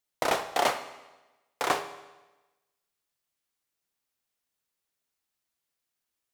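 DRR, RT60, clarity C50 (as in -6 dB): 9.0 dB, 1.1 s, 11.5 dB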